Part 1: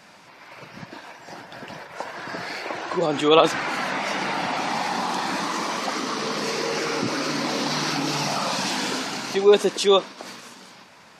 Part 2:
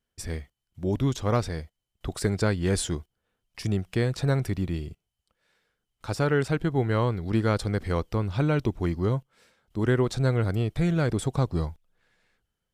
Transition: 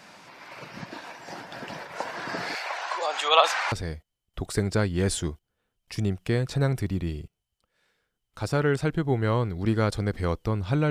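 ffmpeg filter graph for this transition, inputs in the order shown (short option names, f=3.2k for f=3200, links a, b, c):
-filter_complex "[0:a]asettb=1/sr,asplit=3[a][b][c];[a]atrim=end=2.554[d];[b]atrim=start=2.55:end=3.72,asetpts=PTS-STARTPTS,afade=t=in:d=0.004:c=qsin,afade=t=out:st=1.166:d=0.004:c=qsin,highpass=f=660:w=0.5412,highpass=f=660:w=1.3066[e];[c]atrim=start=3.716[f];[d][e]acrossfade=d=0.004:c1=hsin:c2=qsin[g];[g][f]acrossfade=d=0.004:c1=qsin:c2=hsin,apad=whole_dur=10.9,atrim=end=10.9,atrim=end=3.722[h];[1:a]atrim=start=1.388:end=8.57[i];[h][i]acrossfade=d=0.004:c1=hsin:c2=hsin"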